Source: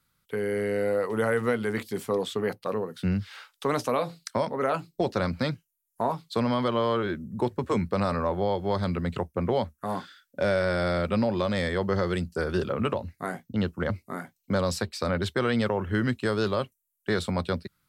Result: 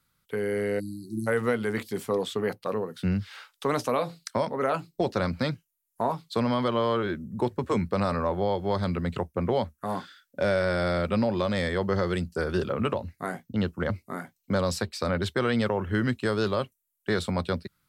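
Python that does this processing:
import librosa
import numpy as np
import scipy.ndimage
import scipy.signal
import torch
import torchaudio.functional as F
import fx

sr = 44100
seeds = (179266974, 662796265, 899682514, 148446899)

y = fx.spec_erase(x, sr, start_s=0.79, length_s=0.48, low_hz=370.0, high_hz=3800.0)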